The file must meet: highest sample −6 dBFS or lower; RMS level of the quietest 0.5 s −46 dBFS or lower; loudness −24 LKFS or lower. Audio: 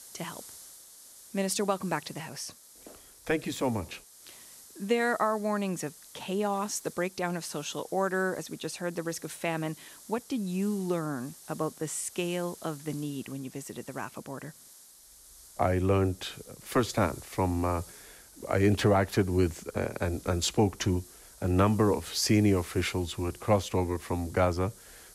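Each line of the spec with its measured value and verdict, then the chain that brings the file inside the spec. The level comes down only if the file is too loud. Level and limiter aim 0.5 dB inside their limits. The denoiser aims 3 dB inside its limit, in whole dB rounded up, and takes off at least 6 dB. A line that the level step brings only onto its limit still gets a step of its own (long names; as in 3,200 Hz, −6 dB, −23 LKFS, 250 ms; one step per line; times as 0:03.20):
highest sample −13.5 dBFS: in spec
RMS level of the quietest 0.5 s −54 dBFS: in spec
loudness −30.5 LKFS: in spec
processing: no processing needed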